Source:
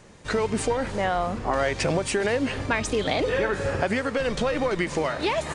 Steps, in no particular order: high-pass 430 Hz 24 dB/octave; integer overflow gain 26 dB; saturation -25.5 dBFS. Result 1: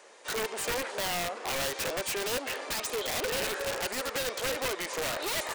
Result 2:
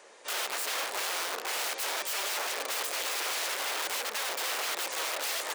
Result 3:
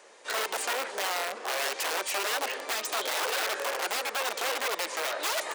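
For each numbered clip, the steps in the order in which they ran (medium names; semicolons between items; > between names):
saturation > high-pass > integer overflow; integer overflow > saturation > high-pass; saturation > integer overflow > high-pass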